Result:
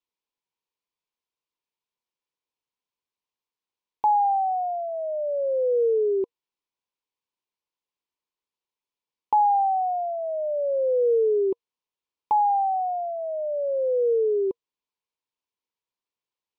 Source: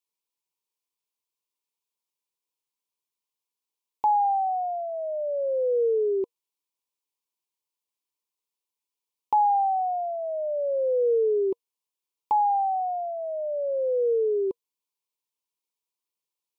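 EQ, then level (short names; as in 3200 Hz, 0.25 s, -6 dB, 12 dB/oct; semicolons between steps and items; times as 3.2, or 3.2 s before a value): air absorption 140 m; +2.0 dB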